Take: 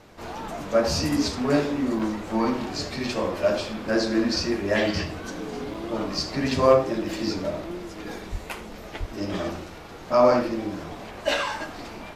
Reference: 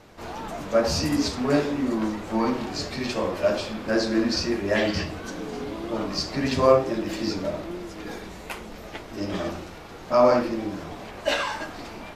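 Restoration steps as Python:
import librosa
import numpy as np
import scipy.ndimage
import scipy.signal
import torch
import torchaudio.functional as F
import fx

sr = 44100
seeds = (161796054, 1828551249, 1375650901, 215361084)

y = fx.fix_declip(x, sr, threshold_db=-6.5)
y = fx.highpass(y, sr, hz=140.0, slope=24, at=(8.31, 8.43), fade=0.02)
y = fx.highpass(y, sr, hz=140.0, slope=24, at=(8.99, 9.11), fade=0.02)
y = fx.fix_interpolate(y, sr, at_s=(1.99, 5.74), length_ms=4.4)
y = fx.fix_echo_inverse(y, sr, delay_ms=80, level_db=-18.0)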